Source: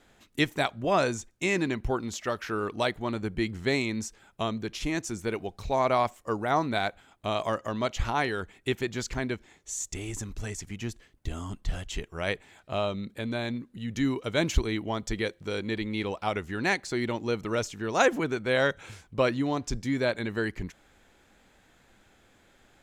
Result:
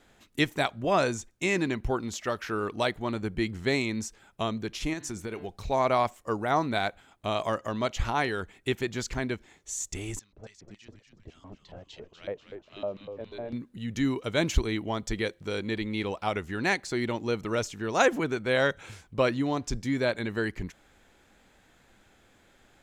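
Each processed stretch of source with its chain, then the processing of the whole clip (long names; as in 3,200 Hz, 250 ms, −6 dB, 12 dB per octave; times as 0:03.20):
0:04.93–0:05.49: hum removal 146.5 Hz, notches 35 + downward compressor 10 to 1, threshold −30 dBFS
0:10.19–0:13.53: bass and treble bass +10 dB, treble −12 dB + auto-filter band-pass square 3.6 Hz 560–4,400 Hz + echo with shifted repeats 244 ms, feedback 59%, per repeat −100 Hz, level −8 dB
whole clip: no processing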